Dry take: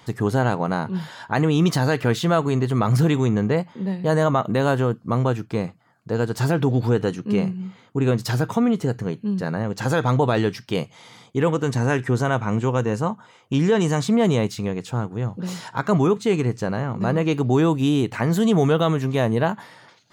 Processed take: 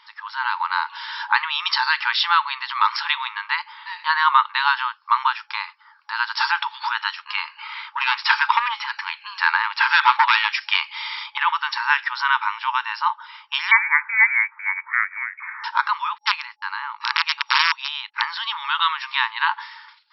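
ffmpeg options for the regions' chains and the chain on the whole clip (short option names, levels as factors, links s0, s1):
-filter_complex "[0:a]asettb=1/sr,asplit=3[s0][s1][s2];[s0]atrim=end=7.584[s3];[s1]atrim=start=7.58:end=11.38,asetpts=PTS-STARTPTS,afade=t=in:d=0.004:c=qsin,afade=t=out:st=3.796:d=0.004:c=qsin,acrossover=split=3300[s4][s5];[s5]acompressor=threshold=0.00398:ratio=4:attack=1:release=60[s6];[s4][s6]amix=inputs=2:normalize=0,equalizer=f=2400:w=4.2:g=5,aeval=exprs='0.398*sin(PI/2*1.78*val(0)/0.398)':c=same[s7];[s2]atrim=start=11.376[s8];[s3][s7]acrossfade=d=0.004:c1=hsin:c2=qsin[s9];[s9][s8]acrossfade=d=0.004:c1=qsin:c2=hsin,asettb=1/sr,asplit=3[s10][s11][s12];[s10]atrim=end=13.714[s13];[s11]atrim=start=13.71:end=15.64,asetpts=PTS-STARTPTS,afade=t=in:d=0.004:c=qsin,afade=t=out:st=1.926:d=0.004:c=qsin,highpass=f=570:w=0.5412,highpass=f=570:w=1.3066,lowpass=f=2300:t=q:w=0.5098,lowpass=f=2300:t=q:w=0.6013,lowpass=f=2300:t=q:w=0.9,lowpass=f=2300:t=q:w=2.563,afreqshift=-2700[s14];[s12]atrim=start=15.636[s15];[s13][s14]acrossfade=d=0.004:c1=hsin:c2=qsin[s16];[s16][s15]acrossfade=d=0.004:c1=qsin:c2=hsin,asettb=1/sr,asplit=3[s17][s18][s19];[s17]atrim=end=16.184[s20];[s18]atrim=start=16.18:end=18.22,asetpts=PTS-STARTPTS,afade=t=in:d=0.004:c=qsin,afade=t=out:st=2.036:d=0.004:c=qsin,agate=range=0.00126:threshold=0.0316:ratio=16:release=100:detection=peak,aeval=exprs='(mod(3.76*val(0)+1,2)-1)/3.76':c=same[s21];[s19]atrim=start=18.216[s22];[s20][s21]acrossfade=d=0.004:c1=hsin:c2=qsin[s23];[s23][s22]acrossfade=d=0.004:c1=qsin:c2=hsin,afftfilt=real='re*between(b*sr/4096,850,5600)':imag='im*between(b*sr/4096,850,5600)':win_size=4096:overlap=0.75,adynamicequalizer=threshold=0.00891:dfrequency=1200:dqfactor=0.71:tfrequency=1200:tqfactor=0.71:attack=5:release=100:ratio=0.375:range=2:mode=cutabove:tftype=bell,dynaudnorm=f=170:g=7:m=4.47"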